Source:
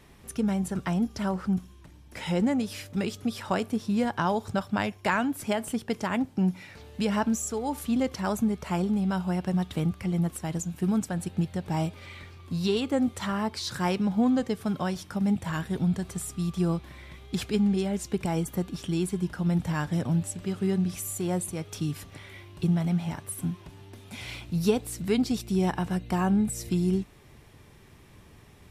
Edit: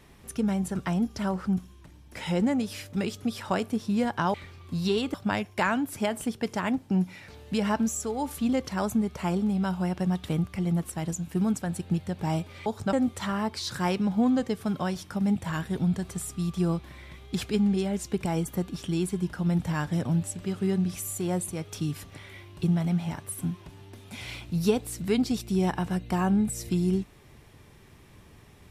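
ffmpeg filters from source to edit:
-filter_complex "[0:a]asplit=5[a][b][c][d][e];[a]atrim=end=4.342[f];[b]atrim=start=12.128:end=12.932[g];[c]atrim=start=4.608:end=12.132[h];[d]atrim=start=4.338:end=4.612[i];[e]atrim=start=12.928[j];[f][g]acrossfade=d=0.004:c1=hsin:c2=hsin[k];[k][h]acrossfade=d=0.004:c1=hsin:c2=hsin[l];[l][i]acrossfade=d=0.004:c1=hsin:c2=hsin[m];[m][j]acrossfade=d=0.004:c1=hsin:c2=hsin"

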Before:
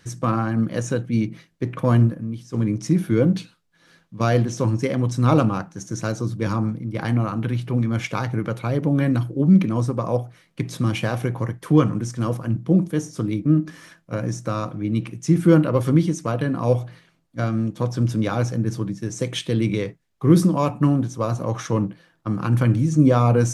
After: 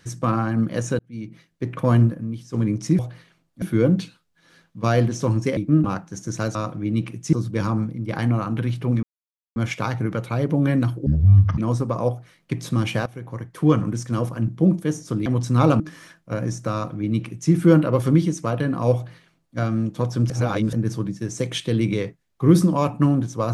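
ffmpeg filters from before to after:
-filter_complex "[0:a]asplit=16[a][b][c][d][e][f][g][h][i][j][k][l][m][n][o][p];[a]atrim=end=0.99,asetpts=PTS-STARTPTS,afade=t=out:st=0.986:d=0.004:c=hsin[q];[b]atrim=start=0.99:end=2.992,asetpts=PTS-STARTPTS,afade=t=in:d=0.79[r];[c]atrim=start=16.758:end=17.392[s];[d]atrim=start=2.988:end=4.942[t];[e]atrim=start=13.338:end=13.612[u];[f]atrim=start=5.478:end=6.192[v];[g]atrim=start=14.538:end=15.322[w];[h]atrim=start=6.188:end=7.89,asetpts=PTS-STARTPTS,afade=t=out:st=1.698:d=0.004:c=hsin,apad=pad_dur=0.53[x];[i]atrim=start=7.89:end=9.394,asetpts=PTS-STARTPTS,afade=t=in:d=0.004:c=hsin[y];[j]atrim=start=9.39:end=9.66,asetpts=PTS-STARTPTS,asetrate=22932,aresample=44100,atrim=end_sample=22898,asetpts=PTS-STARTPTS[z];[k]atrim=start=9.656:end=11.14,asetpts=PTS-STARTPTS,afade=t=out:st=1.48:d=0.004:c=hsin:silence=0.112202[aa];[l]atrim=start=11.14:end=13.342,asetpts=PTS-STARTPTS,afade=t=in:d=0.76:silence=0.112202[ab];[m]atrim=start=4.938:end=5.482[ac];[n]atrim=start=13.608:end=18.112[ad];[o]atrim=start=18.108:end=18.542,asetpts=PTS-STARTPTS,areverse[ae];[p]atrim=start=18.538[af];[q][r]concat=n=2:v=0:a=1[ag];[ag][s]acrossfade=d=0.004:c1=hsin:c2=hsin[ah];[ah][t]acrossfade=d=0.004:c1=hsin:c2=hsin[ai];[ai][u]acrossfade=d=0.004:c1=hsin:c2=hsin[aj];[aj][v]acrossfade=d=0.004:c1=hsin:c2=hsin[ak];[ak][w]acrossfade=d=0.004:c1=hsin:c2=hsin[al];[x][y]concat=n=2:v=0:a=1[am];[al][am]acrossfade=d=0.004:c1=hsin:c2=hsin[an];[an][z]acrossfade=d=0.004:c1=hsin:c2=hsin[ao];[aa][ab]concat=n=2:v=0:a=1[ap];[ao][ap]acrossfade=d=0.004:c1=hsin:c2=hsin[aq];[aq][ac]acrossfade=d=0.004:c1=hsin:c2=hsin[ar];[ar][ad]acrossfade=d=0.004:c1=hsin:c2=hsin[as];[as][ae]acrossfade=d=0.004:c1=hsin:c2=hsin[at];[at][af]acrossfade=d=0.004:c1=hsin:c2=hsin"

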